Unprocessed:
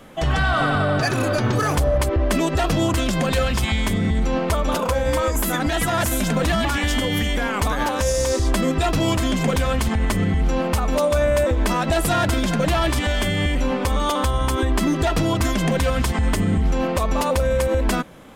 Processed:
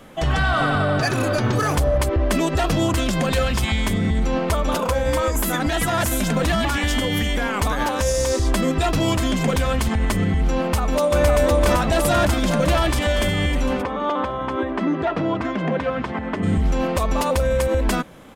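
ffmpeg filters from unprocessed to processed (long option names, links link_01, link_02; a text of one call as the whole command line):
ffmpeg -i in.wav -filter_complex "[0:a]asplit=2[link_01][link_02];[link_02]afade=type=in:start_time=10.61:duration=0.01,afade=type=out:start_time=11.24:duration=0.01,aecho=0:1:510|1020|1530|2040|2550|3060|3570|4080|4590|5100|5610|6120:0.891251|0.623876|0.436713|0.305699|0.213989|0.149793|0.104855|0.0733983|0.0513788|0.0359652|0.0251756|0.0176229[link_03];[link_01][link_03]amix=inputs=2:normalize=0,asplit=3[link_04][link_05][link_06];[link_04]afade=type=out:start_time=13.81:duration=0.02[link_07];[link_05]highpass=180,lowpass=2000,afade=type=in:start_time=13.81:duration=0.02,afade=type=out:start_time=16.42:duration=0.02[link_08];[link_06]afade=type=in:start_time=16.42:duration=0.02[link_09];[link_07][link_08][link_09]amix=inputs=3:normalize=0" out.wav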